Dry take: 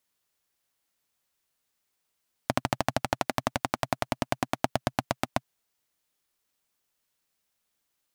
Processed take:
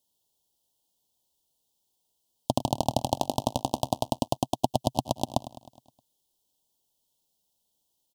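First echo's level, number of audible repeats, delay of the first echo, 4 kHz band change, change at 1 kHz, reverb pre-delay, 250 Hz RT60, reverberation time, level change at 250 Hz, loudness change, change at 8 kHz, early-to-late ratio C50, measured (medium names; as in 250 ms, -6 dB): -15.0 dB, 5, 104 ms, +2.0 dB, +1.5 dB, no reverb, no reverb, no reverb, +3.0 dB, +1.5 dB, +2.5 dB, no reverb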